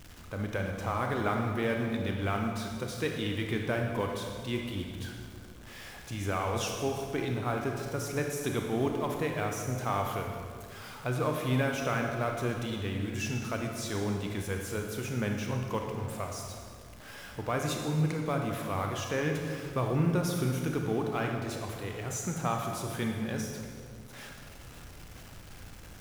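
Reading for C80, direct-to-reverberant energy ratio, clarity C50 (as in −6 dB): 4.5 dB, 2.0 dB, 3.0 dB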